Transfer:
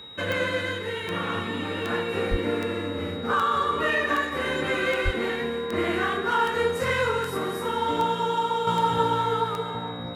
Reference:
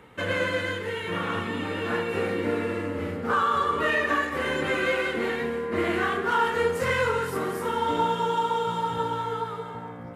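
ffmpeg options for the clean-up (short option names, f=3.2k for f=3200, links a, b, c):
-filter_complex "[0:a]adeclick=t=4,bandreject=f=3.8k:w=30,asplit=3[a][b][c];[a]afade=t=out:st=2.3:d=0.02[d];[b]highpass=f=140:w=0.5412,highpass=f=140:w=1.3066,afade=t=in:st=2.3:d=0.02,afade=t=out:st=2.42:d=0.02[e];[c]afade=t=in:st=2.42:d=0.02[f];[d][e][f]amix=inputs=3:normalize=0,asplit=3[g][h][i];[g]afade=t=out:st=5.04:d=0.02[j];[h]highpass=f=140:w=0.5412,highpass=f=140:w=1.3066,afade=t=in:st=5.04:d=0.02,afade=t=out:st=5.16:d=0.02[k];[i]afade=t=in:st=5.16:d=0.02[l];[j][k][l]amix=inputs=3:normalize=0,asetnsamples=n=441:p=0,asendcmd='8.67 volume volume -5dB',volume=0dB"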